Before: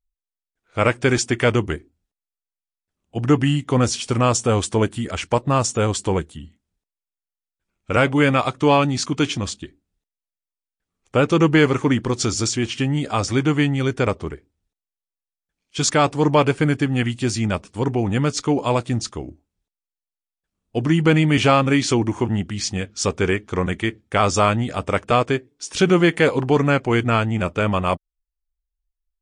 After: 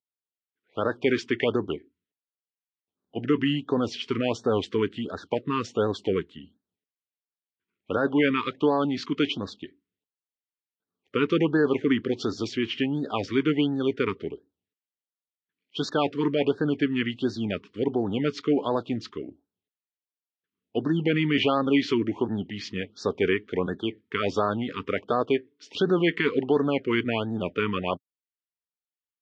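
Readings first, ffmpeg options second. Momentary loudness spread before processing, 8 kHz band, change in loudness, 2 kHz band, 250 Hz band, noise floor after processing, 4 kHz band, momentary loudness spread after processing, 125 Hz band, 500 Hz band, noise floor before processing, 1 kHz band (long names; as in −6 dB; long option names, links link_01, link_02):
10 LU, below −20 dB, −6.5 dB, −7.5 dB, −5.0 dB, below −85 dBFS, −6.0 dB, 10 LU, −13.0 dB, −5.0 dB, below −85 dBFS, −9.5 dB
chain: -af "alimiter=limit=-9dB:level=0:latency=1:release=27,highpass=frequency=110:width=0.5412,highpass=frequency=110:width=1.3066,equalizer=frequency=130:width_type=q:width=4:gain=-9,equalizer=frequency=270:width_type=q:width=4:gain=4,equalizer=frequency=420:width_type=q:width=4:gain=6,equalizer=frequency=2000:width_type=q:width=4:gain=5,equalizer=frequency=3000:width_type=q:width=4:gain=5,lowpass=frequency=4200:width=0.5412,lowpass=frequency=4200:width=1.3066,afftfilt=real='re*(1-between(b*sr/1024,620*pow(2600/620,0.5+0.5*sin(2*PI*1.4*pts/sr))/1.41,620*pow(2600/620,0.5+0.5*sin(2*PI*1.4*pts/sr))*1.41))':imag='im*(1-between(b*sr/1024,620*pow(2600/620,0.5+0.5*sin(2*PI*1.4*pts/sr))/1.41,620*pow(2600/620,0.5+0.5*sin(2*PI*1.4*pts/sr))*1.41))':win_size=1024:overlap=0.75,volume=-6.5dB"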